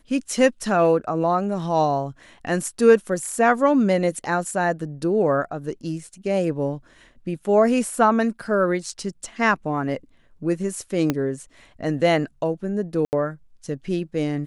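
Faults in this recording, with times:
0:11.10: click −8 dBFS
0:13.05–0:13.13: drop-out 79 ms

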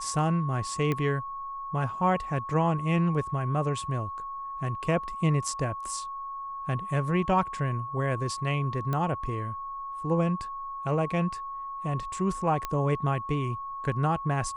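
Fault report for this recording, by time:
whistle 1,100 Hz −34 dBFS
0:00.92: click −16 dBFS
0:08.93: click −18 dBFS
0:12.65: click −16 dBFS

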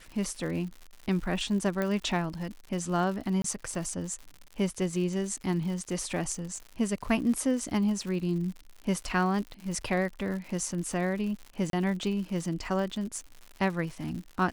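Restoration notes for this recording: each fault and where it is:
surface crackle 130 per second −37 dBFS
0:01.82: click −17 dBFS
0:03.42–0:03.44: drop-out 23 ms
0:11.70–0:11.73: drop-out 32 ms

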